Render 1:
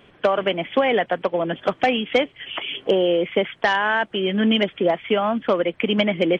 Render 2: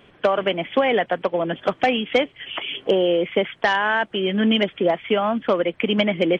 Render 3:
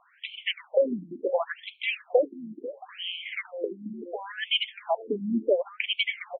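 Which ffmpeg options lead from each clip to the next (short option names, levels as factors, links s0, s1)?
-af anull
-filter_complex "[0:a]asplit=2[s0][s1];[s1]adelay=494,lowpass=f=990:p=1,volume=0.237,asplit=2[s2][s3];[s3]adelay=494,lowpass=f=990:p=1,volume=0.49,asplit=2[s4][s5];[s5]adelay=494,lowpass=f=990:p=1,volume=0.49,asplit=2[s6][s7];[s7]adelay=494,lowpass=f=990:p=1,volume=0.49,asplit=2[s8][s9];[s9]adelay=494,lowpass=f=990:p=1,volume=0.49[s10];[s0][s2][s4][s6][s8][s10]amix=inputs=6:normalize=0,afftfilt=real='re*between(b*sr/1024,230*pow(3100/230,0.5+0.5*sin(2*PI*0.71*pts/sr))/1.41,230*pow(3100/230,0.5+0.5*sin(2*PI*0.71*pts/sr))*1.41)':imag='im*between(b*sr/1024,230*pow(3100/230,0.5+0.5*sin(2*PI*0.71*pts/sr))/1.41,230*pow(3100/230,0.5+0.5*sin(2*PI*0.71*pts/sr))*1.41)':win_size=1024:overlap=0.75,volume=0.891"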